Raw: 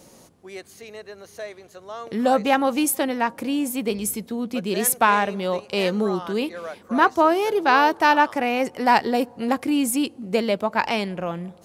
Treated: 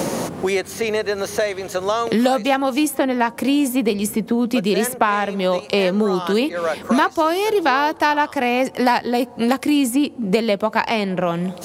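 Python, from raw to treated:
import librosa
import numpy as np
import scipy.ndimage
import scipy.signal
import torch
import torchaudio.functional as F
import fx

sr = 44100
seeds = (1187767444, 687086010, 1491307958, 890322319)

y = fx.band_squash(x, sr, depth_pct=100)
y = y * librosa.db_to_amplitude(2.5)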